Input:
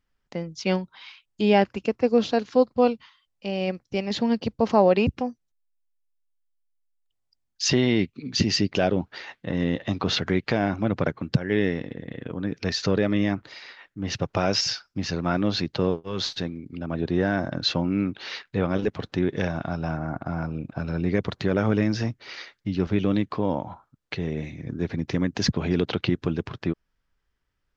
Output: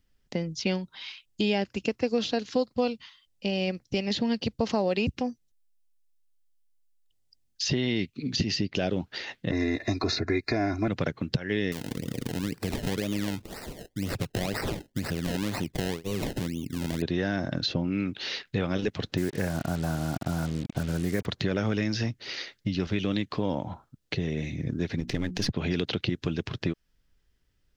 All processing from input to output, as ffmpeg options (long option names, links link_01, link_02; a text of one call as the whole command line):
ffmpeg -i in.wav -filter_complex "[0:a]asettb=1/sr,asplit=3[link_01][link_02][link_03];[link_01]atrim=end=9.514[link_04];[link_02]atrim=start=9.51:end=10.88,asetpts=PTS-STARTPTS,afade=type=in:duration=0.004:curve=qsin,afade=type=out:start_time=1.366:duration=0.004:curve=qsin,asuperstop=centerf=3100:order=8:qfactor=2.6,aecho=1:1:2.9:0.98,atrim=end_sample=60417[link_05];[link_03]atrim=start=10.876[link_06];[link_04][link_05]acrossfade=duration=0.004:curve1=hsin:curve2=qsin[link_07];[link_07][link_06]acrossfade=duration=0.004:curve1=qsin:curve2=hsin,asettb=1/sr,asplit=3[link_08][link_09][link_10];[link_08]atrim=end=11.724[link_11];[link_09]atrim=start=11.72:end=17.02,asetpts=PTS-STARTPTS,afade=type=in:duration=0.004:curve=qsin,afade=type=out:start_time=5.296:duration=0.004:curve=qsin,acompressor=threshold=-32dB:ratio=2:attack=3.2:release=140:knee=1:detection=peak,acrusher=samples=26:mix=1:aa=0.000001:lfo=1:lforange=26:lforate=2[link_12];[link_10]atrim=start=17.016[link_13];[link_11][link_12]acrossfade=duration=0.004:curve1=hsin:curve2=qsin[link_14];[link_14][link_13]acrossfade=duration=0.004:curve1=qsin:curve2=hsin,asettb=1/sr,asplit=3[link_15][link_16][link_17];[link_15]atrim=end=19.174[link_18];[link_16]atrim=start=19.17:end=21.26,asetpts=PTS-STARTPTS,afade=type=in:duration=0.004:curve=qsin,afade=type=out:start_time=2.086:duration=0.004:curve=qsin,asuperstop=centerf=4000:order=4:qfactor=0.66,acrusher=bits=6:mix=0:aa=0.5[link_19];[link_17]atrim=start=21.256[link_20];[link_18][link_19]acrossfade=duration=0.004:curve1=hsin:curve2=qsin[link_21];[link_21][link_20]acrossfade=duration=0.004:curve1=qsin:curve2=hsin,asettb=1/sr,asplit=3[link_22][link_23][link_24];[link_22]atrim=end=25.004[link_25];[link_23]atrim=start=25:end=25.5,asetpts=PTS-STARTPTS,afade=type=in:duration=0.004:curve=qsin,afade=type=out:start_time=0.496:duration=0.004:curve=qsin,aeval=exprs='if(lt(val(0),0),0.447*val(0),val(0))':channel_layout=same,bandreject=frequency=60:width_type=h:width=6,bandreject=frequency=120:width_type=h:width=6,bandreject=frequency=180:width_type=h:width=6,bandreject=frequency=240:width_type=h:width=6,bandreject=frequency=300:width_type=h:width=6,bandreject=frequency=360:width_type=h:width=6[link_26];[link_24]atrim=start=25.496[link_27];[link_25][link_26]acrossfade=duration=0.004:curve1=hsin:curve2=qsin[link_28];[link_28][link_27]acrossfade=duration=0.004:curve1=qsin:curve2=hsin,equalizer=frequency=1100:width=0.83:gain=-10.5,bandreject=frequency=2300:width=28,acrossover=split=790|4600[link_29][link_30][link_31];[link_29]acompressor=threshold=-34dB:ratio=4[link_32];[link_30]acompressor=threshold=-39dB:ratio=4[link_33];[link_31]acompressor=threshold=-49dB:ratio=4[link_34];[link_32][link_33][link_34]amix=inputs=3:normalize=0,volume=7dB" out.wav